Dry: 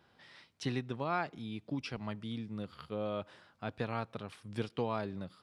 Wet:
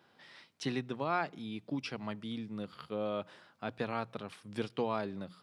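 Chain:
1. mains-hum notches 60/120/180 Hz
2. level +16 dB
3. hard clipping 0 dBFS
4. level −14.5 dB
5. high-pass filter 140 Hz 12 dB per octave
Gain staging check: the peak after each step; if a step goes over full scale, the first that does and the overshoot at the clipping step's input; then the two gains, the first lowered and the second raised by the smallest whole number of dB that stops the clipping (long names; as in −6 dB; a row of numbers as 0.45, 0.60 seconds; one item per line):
−21.0, −5.0, −5.0, −19.5, −19.0 dBFS
no step passes full scale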